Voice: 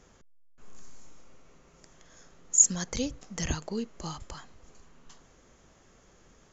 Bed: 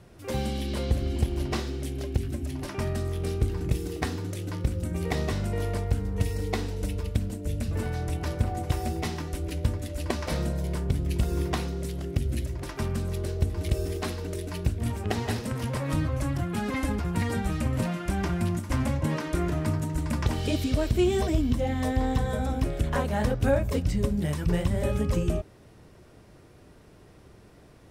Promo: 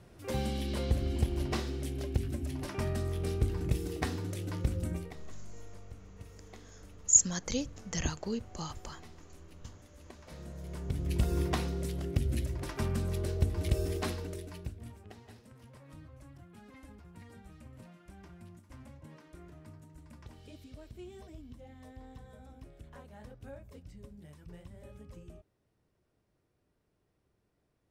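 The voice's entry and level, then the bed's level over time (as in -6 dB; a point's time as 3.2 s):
4.55 s, -2.0 dB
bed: 4.93 s -4 dB
5.17 s -23 dB
10.17 s -23 dB
11.18 s -3 dB
14.1 s -3 dB
15.2 s -24.5 dB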